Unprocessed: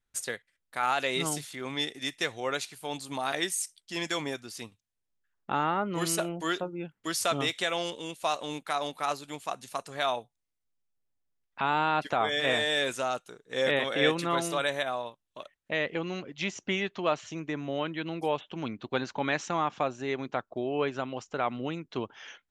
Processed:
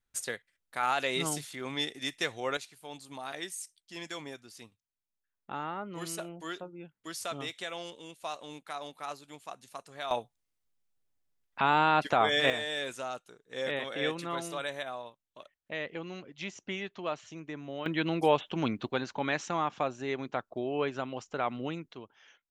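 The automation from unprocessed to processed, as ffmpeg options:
-af "asetnsamples=n=441:p=0,asendcmd='2.57 volume volume -9dB;10.11 volume volume 2dB;12.5 volume volume -7dB;17.86 volume volume 4.5dB;18.91 volume volume -2dB;21.93 volume volume -13dB',volume=-1.5dB"

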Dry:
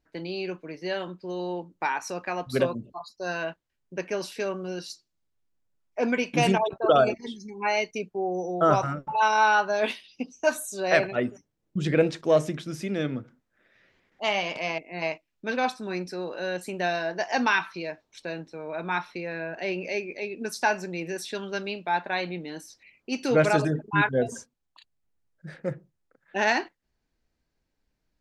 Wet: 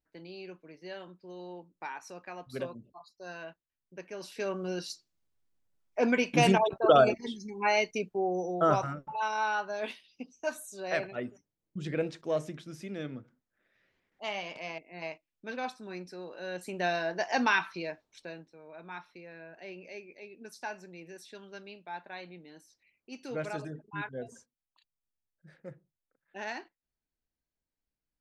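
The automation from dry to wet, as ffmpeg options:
-af "volume=6dB,afade=t=in:st=4.15:d=0.51:silence=0.266073,afade=t=out:st=8.14:d=1.07:silence=0.354813,afade=t=in:st=16.39:d=0.48:silence=0.446684,afade=t=out:st=17.84:d=0.68:silence=0.251189"

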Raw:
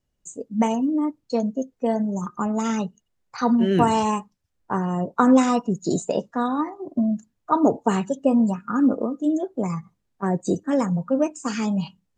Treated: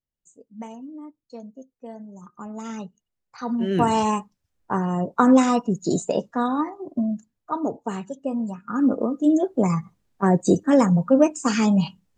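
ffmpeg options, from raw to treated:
-af "volume=13.5dB,afade=t=in:st=2.17:d=0.62:silence=0.421697,afade=t=in:st=3.46:d=0.55:silence=0.354813,afade=t=out:st=6.57:d=1.07:silence=0.375837,afade=t=in:st=8.51:d=0.95:silence=0.223872"

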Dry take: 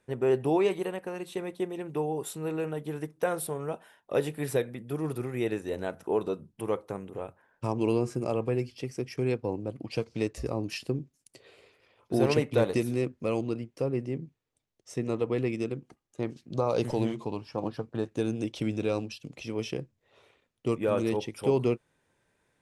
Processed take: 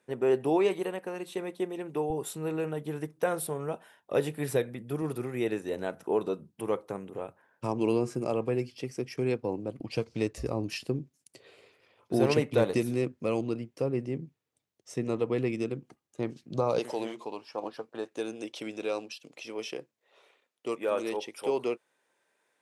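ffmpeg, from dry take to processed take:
-af "asetnsamples=n=441:p=0,asendcmd='2.1 highpass f 61;5.02 highpass f 130;9.8 highpass f 46;10.85 highpass f 100;16.79 highpass f 430',highpass=180"

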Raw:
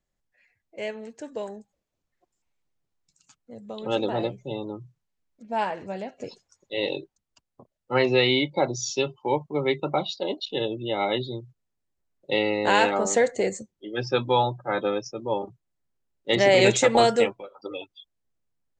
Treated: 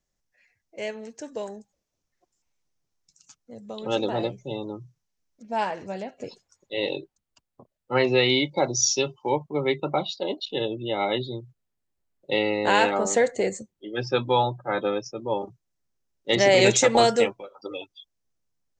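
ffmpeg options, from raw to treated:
-af "asetnsamples=n=441:p=0,asendcmd='6.03 equalizer g -1;8.3 equalizer g 10.5;9.29 equalizer g -0.5;15.39 equalizer g 7.5',equalizer=f=5.8k:t=o:w=0.55:g=9.5"

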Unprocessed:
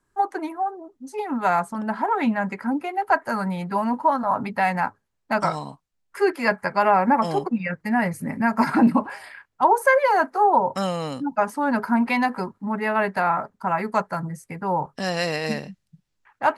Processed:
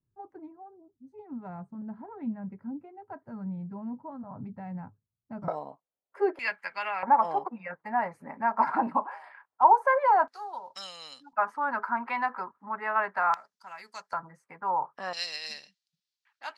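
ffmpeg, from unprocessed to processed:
-af "asetnsamples=n=441:p=0,asendcmd='5.48 bandpass f 590;6.39 bandpass f 2800;7.03 bandpass f 910;10.28 bandpass f 4400;11.33 bandpass f 1200;13.34 bandpass f 5200;14.13 bandpass f 1100;15.13 bandpass f 4400',bandpass=f=110:t=q:w=2.1:csg=0"

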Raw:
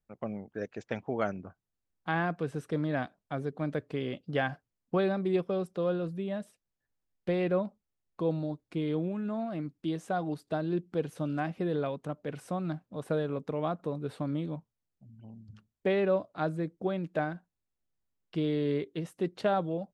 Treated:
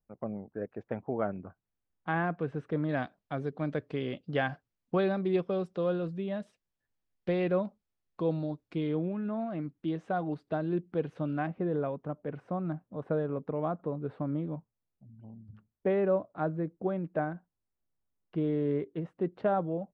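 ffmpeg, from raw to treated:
-af "asetnsamples=n=441:p=0,asendcmd='1.33 lowpass f 2300;2.89 lowpass f 4900;8.87 lowpass f 2600;11.47 lowpass f 1500',lowpass=1.2k"

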